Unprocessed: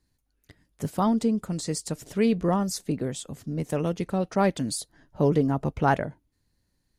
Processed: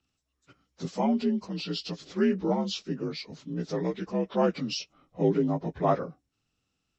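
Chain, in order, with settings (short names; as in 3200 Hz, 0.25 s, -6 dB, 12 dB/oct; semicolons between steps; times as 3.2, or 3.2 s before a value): inharmonic rescaling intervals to 84%; low shelf 120 Hz -9 dB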